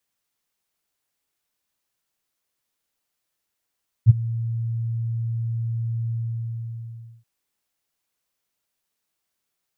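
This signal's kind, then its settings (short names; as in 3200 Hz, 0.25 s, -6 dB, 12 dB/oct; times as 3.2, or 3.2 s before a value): ADSR sine 115 Hz, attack 38 ms, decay 20 ms, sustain -19 dB, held 2.05 s, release 1.13 s -4 dBFS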